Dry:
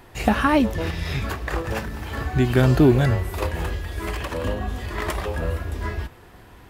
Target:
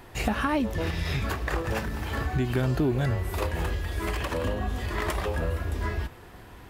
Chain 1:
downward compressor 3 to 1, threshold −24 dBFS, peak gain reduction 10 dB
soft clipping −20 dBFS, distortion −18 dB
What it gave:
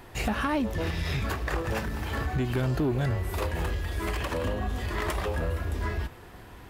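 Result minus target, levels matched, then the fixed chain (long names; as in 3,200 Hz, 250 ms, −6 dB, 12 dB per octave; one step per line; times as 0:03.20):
soft clipping: distortion +10 dB
downward compressor 3 to 1, threshold −24 dBFS, peak gain reduction 10 dB
soft clipping −13 dBFS, distortion −28 dB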